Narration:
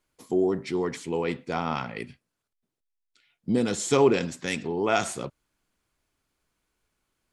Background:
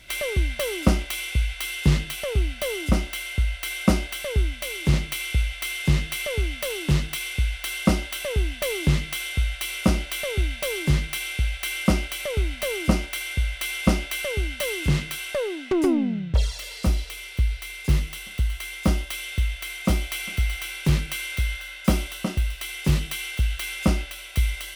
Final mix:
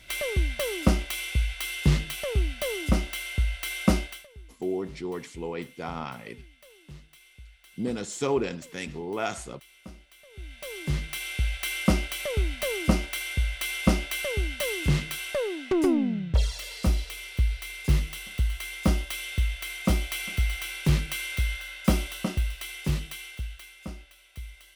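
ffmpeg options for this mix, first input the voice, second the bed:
ffmpeg -i stem1.wav -i stem2.wav -filter_complex "[0:a]adelay=4300,volume=-6dB[link_01];[1:a]volume=20.5dB,afade=type=out:start_time=3.97:duration=0.3:silence=0.0749894,afade=type=in:start_time=10.3:duration=1.22:silence=0.0707946,afade=type=out:start_time=22.22:duration=1.51:silence=0.158489[link_02];[link_01][link_02]amix=inputs=2:normalize=0" out.wav

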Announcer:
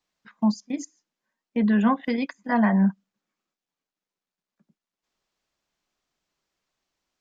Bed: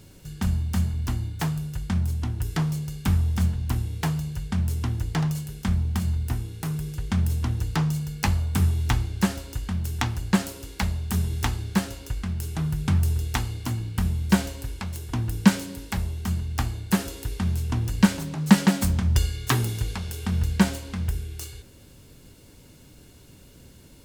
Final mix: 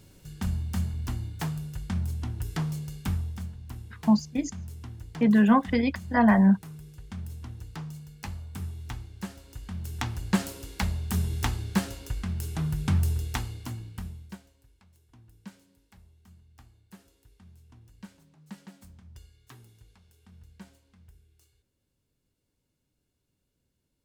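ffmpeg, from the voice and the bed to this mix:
ffmpeg -i stem1.wav -i stem2.wav -filter_complex "[0:a]adelay=3650,volume=1dB[link_01];[1:a]volume=7dB,afade=type=out:start_time=2.96:duration=0.48:silence=0.334965,afade=type=in:start_time=9.36:duration=1.15:silence=0.251189,afade=type=out:start_time=13:duration=1.39:silence=0.0501187[link_02];[link_01][link_02]amix=inputs=2:normalize=0" out.wav

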